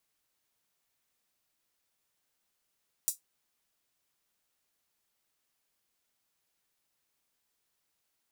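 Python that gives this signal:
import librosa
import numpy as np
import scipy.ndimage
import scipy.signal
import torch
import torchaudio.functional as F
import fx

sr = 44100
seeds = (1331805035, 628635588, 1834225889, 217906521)

y = fx.drum_hat(sr, length_s=0.24, from_hz=7200.0, decay_s=0.14)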